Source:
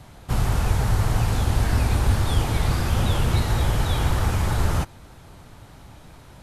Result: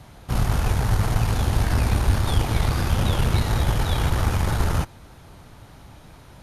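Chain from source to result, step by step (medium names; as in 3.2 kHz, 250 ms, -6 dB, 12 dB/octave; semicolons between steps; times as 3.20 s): band-stop 7.7 kHz, Q 10; Chebyshev shaper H 4 -19 dB, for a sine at -7 dBFS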